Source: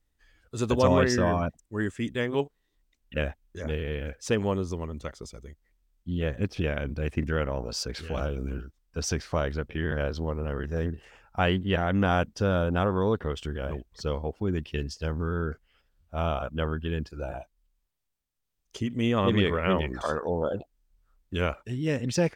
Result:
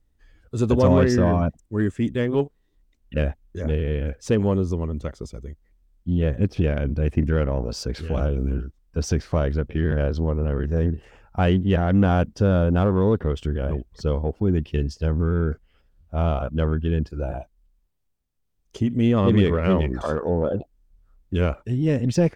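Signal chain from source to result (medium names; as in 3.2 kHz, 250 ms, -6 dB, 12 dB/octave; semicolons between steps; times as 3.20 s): in parallel at -4 dB: saturation -24 dBFS, distortion -10 dB; on the sum: tilt shelf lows +5.5 dB, about 670 Hz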